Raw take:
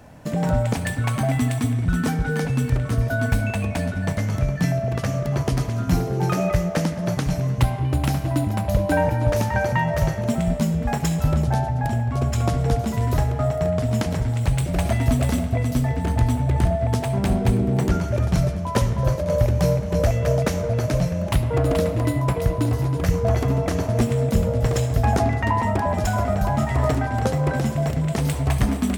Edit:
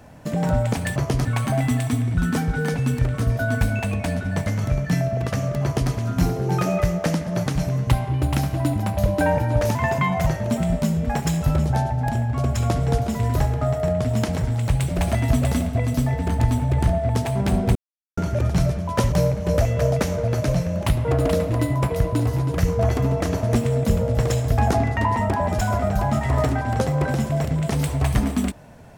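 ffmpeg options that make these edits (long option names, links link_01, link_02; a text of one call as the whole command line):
ffmpeg -i in.wav -filter_complex "[0:a]asplit=8[link_01][link_02][link_03][link_04][link_05][link_06][link_07][link_08];[link_01]atrim=end=0.962[link_09];[link_02]atrim=start=5.338:end=5.632[link_10];[link_03]atrim=start=0.958:end=9.464[link_11];[link_04]atrim=start=9.46:end=10.04,asetpts=PTS-STARTPTS,asetrate=49833,aresample=44100,atrim=end_sample=22635,asetpts=PTS-STARTPTS[link_12];[link_05]atrim=start=10.036:end=17.53,asetpts=PTS-STARTPTS,afade=type=out:start_time=7.49:duration=0.004:curve=hsin[link_13];[link_06]atrim=start=17.53:end=17.95,asetpts=PTS-STARTPTS,volume=0[link_14];[link_07]atrim=start=17.95:end=18.902,asetpts=PTS-STARTPTS,afade=type=in:duration=0.004:curve=hsin[link_15];[link_08]atrim=start=19.578[link_16];[link_09][link_10]acrossfade=duration=0.004:curve1=hsin:curve2=hsin[link_17];[link_17][link_11]acrossfade=duration=0.004:curve1=hsin:curve2=hsin[link_18];[link_18][link_12]acrossfade=duration=0.004:curve1=hsin:curve2=hsin[link_19];[link_13][link_14][link_15]concat=n=3:v=0:a=1[link_20];[link_19][link_20]acrossfade=duration=0.004:curve1=hsin:curve2=hsin[link_21];[link_21][link_16]acrossfade=duration=0.004:curve1=hsin:curve2=hsin" out.wav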